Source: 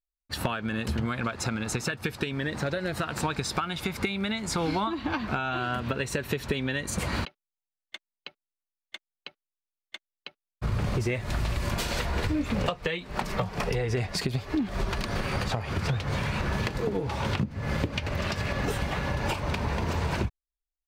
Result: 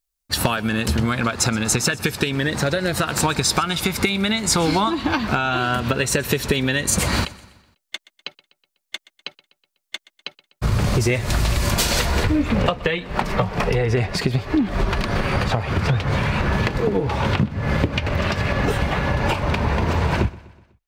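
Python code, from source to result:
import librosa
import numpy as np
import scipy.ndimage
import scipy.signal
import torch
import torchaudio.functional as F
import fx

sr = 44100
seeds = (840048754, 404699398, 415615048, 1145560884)

y = fx.bass_treble(x, sr, bass_db=0, treble_db=fx.steps((0.0, 7.0), (12.22, -6.0)))
y = fx.echo_feedback(y, sr, ms=124, feedback_pct=52, wet_db=-21)
y = y * librosa.db_to_amplitude(8.5)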